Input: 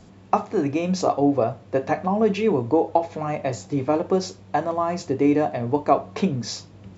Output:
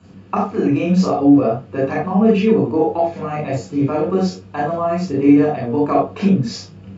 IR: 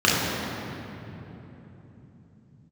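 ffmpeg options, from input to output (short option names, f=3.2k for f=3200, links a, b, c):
-filter_complex "[0:a]highshelf=f=6.2k:g=-4.5[a];[1:a]atrim=start_sample=2205,afade=t=out:st=0.14:d=0.01,atrim=end_sample=6615[b];[a][b]afir=irnorm=-1:irlink=0,volume=-14.5dB"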